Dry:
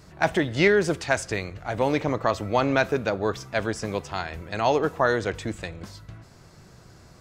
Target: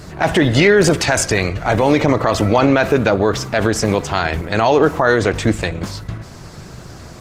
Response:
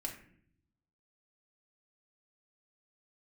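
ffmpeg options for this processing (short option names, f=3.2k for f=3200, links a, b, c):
-filter_complex "[0:a]asplit=2[a][b];[1:a]atrim=start_sample=2205[c];[b][c]afir=irnorm=-1:irlink=0,volume=-19dB[d];[a][d]amix=inputs=2:normalize=0,alimiter=level_in=17.5dB:limit=-1dB:release=50:level=0:latency=1,volume=-2dB" -ar 48000 -c:a libopus -b:a 16k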